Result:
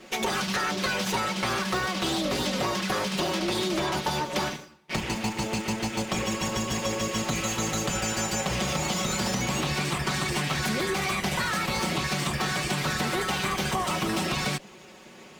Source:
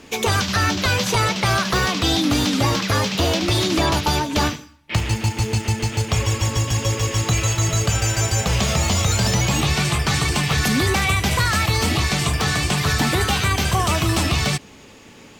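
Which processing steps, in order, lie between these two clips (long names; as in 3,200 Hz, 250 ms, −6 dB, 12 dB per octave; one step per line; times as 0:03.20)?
lower of the sound and its delayed copy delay 5.4 ms
high-pass filter 330 Hz 6 dB per octave
spectral tilt −1.5 dB per octave
downward compressor, threshold −24 dBFS, peak gain reduction 7 dB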